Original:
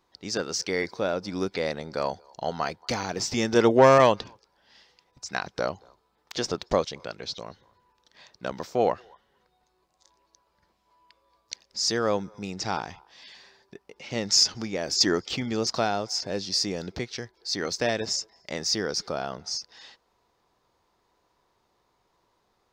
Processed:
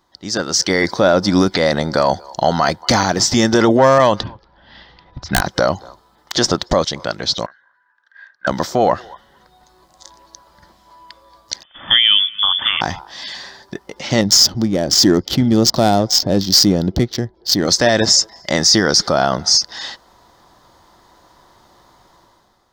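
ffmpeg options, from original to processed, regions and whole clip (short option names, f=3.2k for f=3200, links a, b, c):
-filter_complex "[0:a]asettb=1/sr,asplit=3[a][b][c];[a]atrim=end=4.234[d];[b]atrim=start=4.23:end=5.42,asetpts=PTS-STARTPTS,afade=t=in:d=0.004:c=qsin,afade=t=out:st=1.186:d=0.004:c=qsin,lowpass=f=3.7k:w=0.5412,lowpass=f=3.7k:w=1.3066,aeval=exprs='(mod(9.44*val(0)+1,2)-1)/9.44':c=same,lowshelf=f=170:g=12[e];[c]atrim=start=5.416[f];[d][e]acrossfade=d=0.004:c1=hsin:c2=qsin[g];[g][f]acrossfade=d=0.004:c1=qsin:c2=hsin,asettb=1/sr,asplit=3[h][i][j];[h]atrim=end=7.464[k];[i]atrim=start=7.46:end=8.47,asetpts=PTS-STARTPTS,afade=t=in:d=0.004:c=qsin,afade=t=out:st=1.006:d=0.004:c=qsin,acontrast=64,bandpass=f=1.6k:t=q:w=20[l];[j]atrim=start=8.466[m];[k][l]acrossfade=d=0.004:c1=hsin:c2=qsin[n];[n][m]acrossfade=d=0.004:c1=qsin:c2=hsin,asettb=1/sr,asplit=3[o][p][q];[o]atrim=end=11.634[r];[p]atrim=start=11.63:end=12.81,asetpts=PTS-STARTPTS,afade=t=in:d=0.004:c=qsin,afade=t=out:st=1.176:d=0.004:c=qsin,lowpass=f=3.1k:t=q:w=0.5098,lowpass=f=3.1k:t=q:w=0.6013,lowpass=f=3.1k:t=q:w=0.9,lowpass=f=3.1k:t=q:w=2.563,afreqshift=-3600,equalizer=f=1.2k:w=7.5:g=3.5[s];[q]atrim=start=12.806[t];[r][s]acrossfade=d=0.004:c1=hsin:c2=qsin[u];[u][t]acrossfade=d=0.004:c1=qsin:c2=hsin,asettb=1/sr,asplit=3[v][w][x];[v]atrim=end=14.214[y];[w]atrim=start=14.21:end=17.68,asetpts=PTS-STARTPTS,afade=t=in:d=0.004:c=qsin,afade=t=out:st=3.466:d=0.004:c=qsin,equalizer=f=1.5k:w=0.62:g=-13,adynamicsmooth=sensitivity=8:basefreq=1.7k[z];[x]atrim=start=17.676[aa];[y][z]acrossfade=d=0.004:c1=hsin:c2=qsin[ab];[ab][aa]acrossfade=d=0.004:c1=qsin:c2=hsin,dynaudnorm=f=100:g=13:m=12.5dB,alimiter=limit=-10dB:level=0:latency=1:release=16,superequalizer=7b=0.501:12b=0.447,volume=8dB"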